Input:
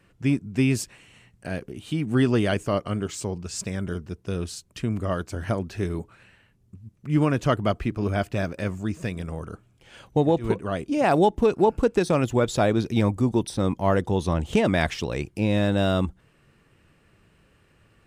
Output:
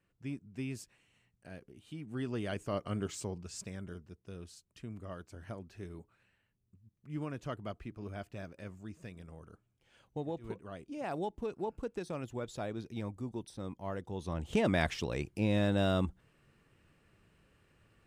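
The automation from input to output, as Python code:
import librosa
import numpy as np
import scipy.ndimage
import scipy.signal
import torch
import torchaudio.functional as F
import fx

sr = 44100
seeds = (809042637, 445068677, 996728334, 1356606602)

y = fx.gain(x, sr, db=fx.line((2.16, -18.0), (3.03, -7.5), (4.22, -18.0), (14.06, -18.0), (14.66, -7.5)))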